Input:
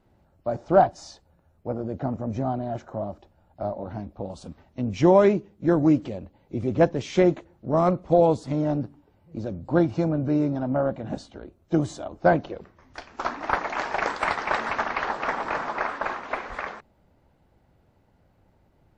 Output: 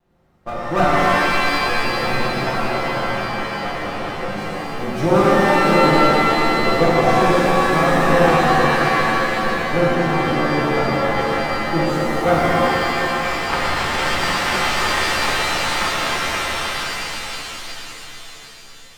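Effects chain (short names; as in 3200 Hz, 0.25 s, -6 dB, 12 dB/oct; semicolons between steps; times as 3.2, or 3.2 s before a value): minimum comb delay 5.7 ms; harmonic-percussive split percussive +5 dB; shimmer reverb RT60 3.7 s, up +7 st, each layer -2 dB, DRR -7 dB; gain -5 dB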